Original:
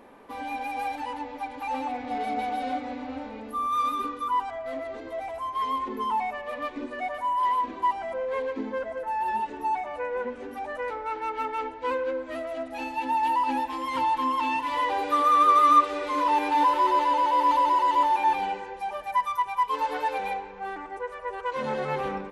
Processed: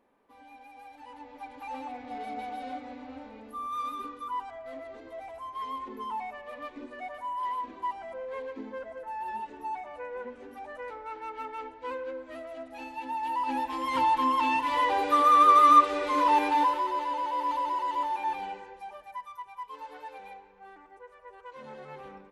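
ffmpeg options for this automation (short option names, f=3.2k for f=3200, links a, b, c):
-af "volume=0.5dB,afade=t=in:st=0.91:d=0.6:silence=0.298538,afade=t=in:st=13.25:d=0.7:silence=0.375837,afade=t=out:st=16.38:d=0.48:silence=0.375837,afade=t=out:st=18.61:d=0.6:silence=0.421697"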